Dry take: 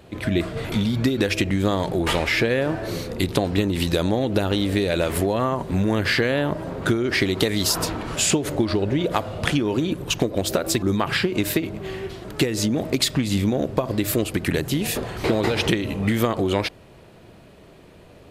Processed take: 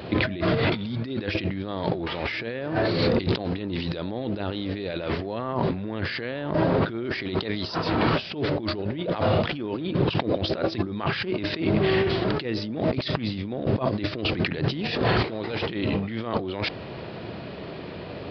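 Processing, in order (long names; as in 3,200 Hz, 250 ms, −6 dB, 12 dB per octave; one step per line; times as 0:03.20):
high-pass filter 90 Hz
compressor whose output falls as the input rises −32 dBFS, ratio −1
downsampling to 11,025 Hz
level +4.5 dB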